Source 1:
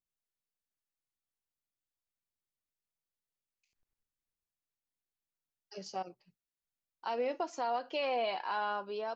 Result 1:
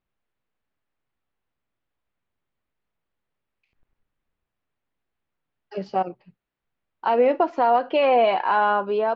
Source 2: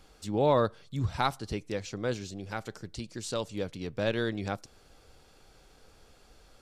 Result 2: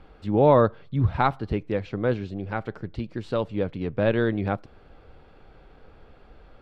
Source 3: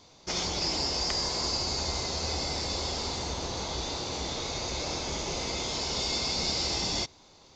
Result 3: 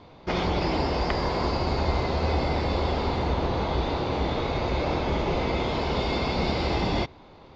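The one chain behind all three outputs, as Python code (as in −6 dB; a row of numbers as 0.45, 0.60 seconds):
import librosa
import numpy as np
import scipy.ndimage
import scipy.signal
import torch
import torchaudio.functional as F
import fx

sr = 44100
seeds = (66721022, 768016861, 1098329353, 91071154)

y = fx.air_absorb(x, sr, metres=480.0)
y = y * 10.0 ** (-26 / 20.0) / np.sqrt(np.mean(np.square(y)))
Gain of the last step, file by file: +17.0, +8.5, +11.0 decibels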